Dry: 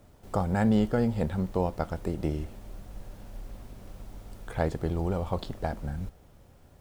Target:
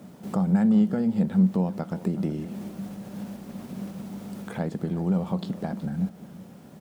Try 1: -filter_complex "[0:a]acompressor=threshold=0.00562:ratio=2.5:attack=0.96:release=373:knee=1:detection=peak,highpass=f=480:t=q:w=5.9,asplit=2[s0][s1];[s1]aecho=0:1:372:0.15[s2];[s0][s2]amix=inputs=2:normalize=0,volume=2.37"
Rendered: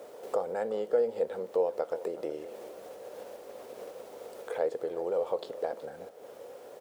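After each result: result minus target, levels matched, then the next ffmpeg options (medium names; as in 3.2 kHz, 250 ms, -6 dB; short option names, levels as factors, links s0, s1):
250 Hz band -17.0 dB; compression: peak gain reduction +4 dB
-filter_complex "[0:a]acompressor=threshold=0.00562:ratio=2.5:attack=0.96:release=373:knee=1:detection=peak,highpass=f=190:t=q:w=5.9,asplit=2[s0][s1];[s1]aecho=0:1:372:0.15[s2];[s0][s2]amix=inputs=2:normalize=0,volume=2.37"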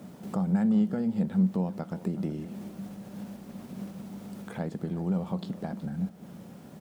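compression: peak gain reduction +4 dB
-filter_complex "[0:a]acompressor=threshold=0.0126:ratio=2.5:attack=0.96:release=373:knee=1:detection=peak,highpass=f=190:t=q:w=5.9,asplit=2[s0][s1];[s1]aecho=0:1:372:0.15[s2];[s0][s2]amix=inputs=2:normalize=0,volume=2.37"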